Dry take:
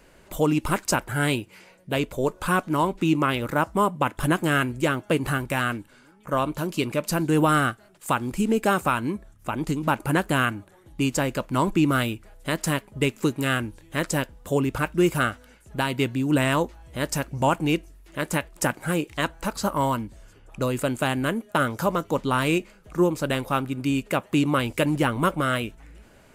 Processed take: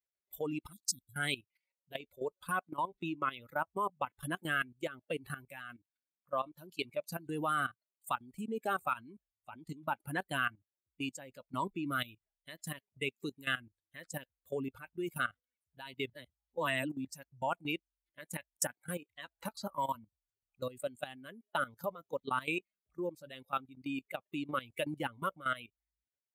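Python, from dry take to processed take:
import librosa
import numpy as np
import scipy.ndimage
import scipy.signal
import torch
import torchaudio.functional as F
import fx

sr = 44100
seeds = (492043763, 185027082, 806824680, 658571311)

y = fx.spec_erase(x, sr, start_s=0.72, length_s=0.42, low_hz=340.0, high_hz=3300.0)
y = fx.band_squash(y, sr, depth_pct=70, at=(19.38, 19.95))
y = fx.edit(y, sr, fx.reverse_span(start_s=16.13, length_s=0.95), tone=tone)
y = fx.bin_expand(y, sr, power=2.0)
y = fx.level_steps(y, sr, step_db=15)
y = fx.highpass(y, sr, hz=500.0, slope=6)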